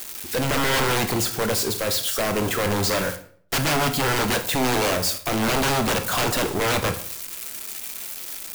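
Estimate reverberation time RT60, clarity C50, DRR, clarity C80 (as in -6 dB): 0.55 s, 11.5 dB, 7.0 dB, 15.5 dB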